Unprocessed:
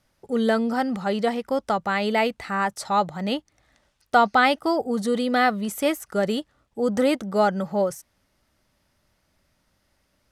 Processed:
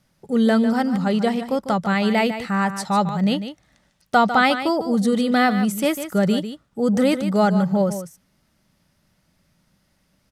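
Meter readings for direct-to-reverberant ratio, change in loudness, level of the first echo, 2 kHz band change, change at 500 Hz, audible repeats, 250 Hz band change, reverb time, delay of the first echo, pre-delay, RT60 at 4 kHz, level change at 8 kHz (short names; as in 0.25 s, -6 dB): none, +3.5 dB, -10.5 dB, +1.5 dB, +1.0 dB, 1, +6.5 dB, none, 0.149 s, none, none, +3.0 dB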